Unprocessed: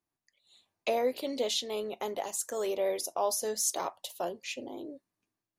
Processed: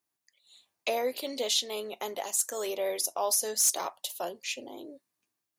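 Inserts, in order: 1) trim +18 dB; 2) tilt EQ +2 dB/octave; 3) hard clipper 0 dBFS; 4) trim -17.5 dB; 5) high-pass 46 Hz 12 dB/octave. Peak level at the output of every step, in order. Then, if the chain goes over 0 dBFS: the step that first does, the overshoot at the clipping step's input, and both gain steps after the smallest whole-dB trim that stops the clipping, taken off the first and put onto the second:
+2.0 dBFS, +7.5 dBFS, 0.0 dBFS, -17.5 dBFS, -17.0 dBFS; step 1, 7.5 dB; step 1 +10 dB, step 4 -9.5 dB

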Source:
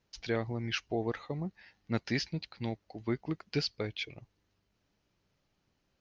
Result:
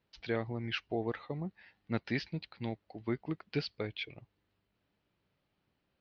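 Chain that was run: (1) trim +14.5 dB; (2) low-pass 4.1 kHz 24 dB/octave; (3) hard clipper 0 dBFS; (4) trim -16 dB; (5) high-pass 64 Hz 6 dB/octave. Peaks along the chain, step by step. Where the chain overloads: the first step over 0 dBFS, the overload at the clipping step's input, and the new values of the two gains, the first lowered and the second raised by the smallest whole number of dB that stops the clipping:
-3.5 dBFS, -3.5 dBFS, -3.5 dBFS, -19.5 dBFS, -18.0 dBFS; nothing clips

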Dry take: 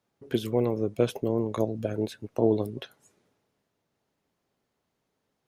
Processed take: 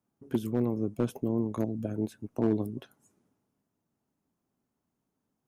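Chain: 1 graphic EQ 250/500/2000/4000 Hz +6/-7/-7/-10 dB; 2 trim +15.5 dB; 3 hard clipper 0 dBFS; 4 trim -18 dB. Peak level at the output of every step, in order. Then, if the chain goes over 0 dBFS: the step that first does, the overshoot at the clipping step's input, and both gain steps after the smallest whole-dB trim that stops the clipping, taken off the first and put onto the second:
-11.0 dBFS, +4.5 dBFS, 0.0 dBFS, -18.0 dBFS; step 2, 4.5 dB; step 2 +10.5 dB, step 4 -13 dB

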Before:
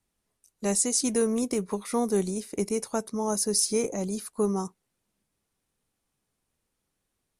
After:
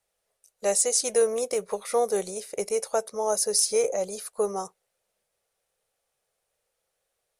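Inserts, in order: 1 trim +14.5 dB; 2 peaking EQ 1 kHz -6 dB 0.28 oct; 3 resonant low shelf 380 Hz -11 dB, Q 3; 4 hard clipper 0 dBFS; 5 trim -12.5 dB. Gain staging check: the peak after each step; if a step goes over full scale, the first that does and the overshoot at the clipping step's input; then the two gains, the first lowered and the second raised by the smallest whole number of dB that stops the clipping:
+3.0 dBFS, +3.0 dBFS, +3.0 dBFS, 0.0 dBFS, -12.5 dBFS; step 1, 3.0 dB; step 1 +11.5 dB, step 5 -9.5 dB

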